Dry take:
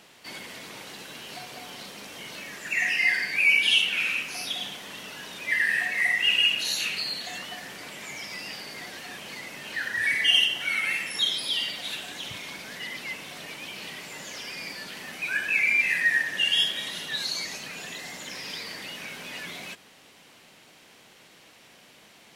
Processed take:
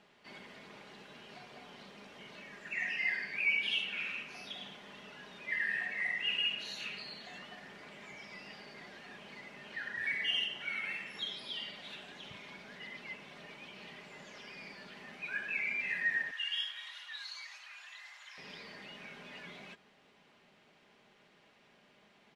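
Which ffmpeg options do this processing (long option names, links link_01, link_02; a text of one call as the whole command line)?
ffmpeg -i in.wav -filter_complex "[0:a]asettb=1/sr,asplit=3[link_01][link_02][link_03];[link_01]atrim=end=16.314[link_04];[link_02]atrim=start=16.31:end=18.38,asetpts=PTS-STARTPTS,afade=type=in:duration=0.004:curve=qsin,afade=type=out:start_time=2.066:duration=0.004:curve=qsin,highpass=frequency=1000:width=0.5412,highpass=frequency=1000:width=1.3066[link_05];[link_03]atrim=start=18.376[link_06];[link_04][link_05]acrossfade=duration=0.004:curve1=hsin:curve2=qsin[link_07];[link_07][link_06]acrossfade=duration=0.004:curve1=qsin:curve2=hsin,lowpass=frequency=3900:poles=1,aemphasis=mode=reproduction:type=50kf,aecho=1:1:4.9:0.36,volume=-9dB" out.wav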